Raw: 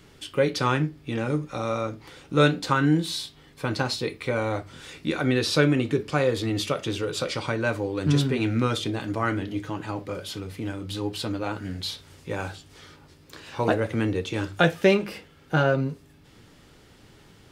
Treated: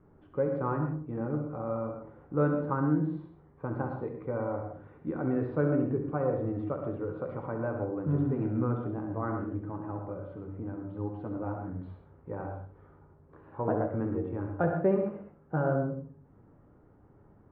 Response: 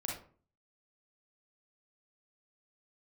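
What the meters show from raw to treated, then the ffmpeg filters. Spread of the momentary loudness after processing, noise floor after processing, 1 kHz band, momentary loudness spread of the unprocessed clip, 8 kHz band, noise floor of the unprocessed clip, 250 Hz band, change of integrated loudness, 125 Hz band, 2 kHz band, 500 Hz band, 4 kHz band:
13 LU, −59 dBFS, −7.5 dB, 12 LU, below −40 dB, −54 dBFS, −5.0 dB, −6.5 dB, −5.5 dB, −16.0 dB, −5.5 dB, below −40 dB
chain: -filter_complex "[0:a]lowpass=frequency=1200:width=0.5412,lowpass=frequency=1200:width=1.3066,asplit=2[link_01][link_02];[1:a]atrim=start_sample=2205,adelay=67[link_03];[link_02][link_03]afir=irnorm=-1:irlink=0,volume=-5.5dB[link_04];[link_01][link_04]amix=inputs=2:normalize=0,volume=-7dB"

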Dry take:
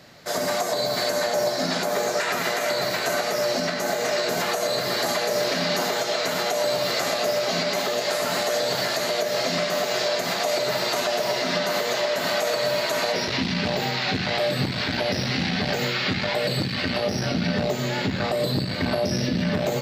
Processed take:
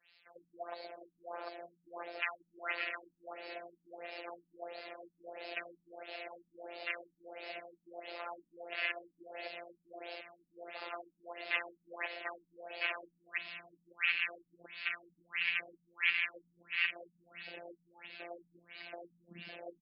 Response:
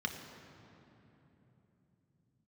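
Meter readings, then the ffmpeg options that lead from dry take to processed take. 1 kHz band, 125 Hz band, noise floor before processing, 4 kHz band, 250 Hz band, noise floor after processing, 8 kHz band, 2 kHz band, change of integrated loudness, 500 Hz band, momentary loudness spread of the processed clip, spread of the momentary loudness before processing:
−20.5 dB, below −35 dB, −28 dBFS, −20.5 dB, −29.0 dB, −80 dBFS, below −40 dB, −11.0 dB, −16.0 dB, −25.0 dB, 18 LU, 2 LU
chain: -filter_complex "[0:a]acrossover=split=2700[link_01][link_02];[link_02]acompressor=threshold=-43dB:ratio=4:attack=1:release=60[link_03];[link_01][link_03]amix=inputs=2:normalize=0,aderivative,afwtdn=0.0112,equalizer=frequency=2600:width_type=o:width=0.67:gain=14,afftfilt=real='hypot(re,im)*cos(PI*b)':imag='0':win_size=1024:overlap=0.75,asplit=2[link_04][link_05];[link_05]adelay=560,lowpass=frequency=2300:poles=1,volume=-15.5dB,asplit=2[link_06][link_07];[link_07]adelay=560,lowpass=frequency=2300:poles=1,volume=0.22[link_08];[link_06][link_08]amix=inputs=2:normalize=0[link_09];[link_04][link_09]amix=inputs=2:normalize=0,afftfilt=real='re*lt(b*sr/1024,270*pow(5400/270,0.5+0.5*sin(2*PI*1.5*pts/sr)))':imag='im*lt(b*sr/1024,270*pow(5400/270,0.5+0.5*sin(2*PI*1.5*pts/sr)))':win_size=1024:overlap=0.75,volume=7.5dB"

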